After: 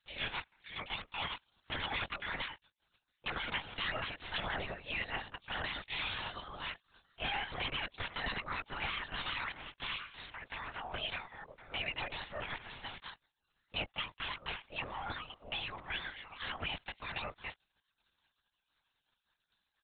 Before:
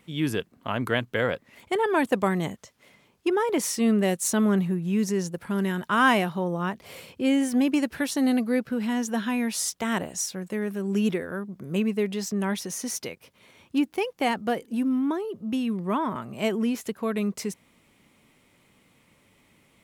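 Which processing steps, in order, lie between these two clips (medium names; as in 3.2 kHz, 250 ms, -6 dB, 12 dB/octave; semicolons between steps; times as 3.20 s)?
spectral gate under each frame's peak -25 dB weak; comb 5 ms, depth 91%; peak limiter -29.5 dBFS, peak gain reduction 6.5 dB; LPC vocoder at 8 kHz whisper; trim +4.5 dB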